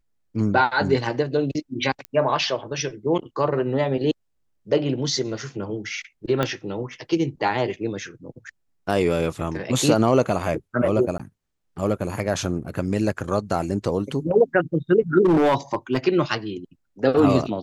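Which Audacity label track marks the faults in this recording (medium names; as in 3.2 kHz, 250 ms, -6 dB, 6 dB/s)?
2.050000	2.050000	pop -17 dBFS
6.430000	6.430000	pop -9 dBFS
11.180000	11.200000	dropout 15 ms
15.250000	15.970000	clipped -14 dBFS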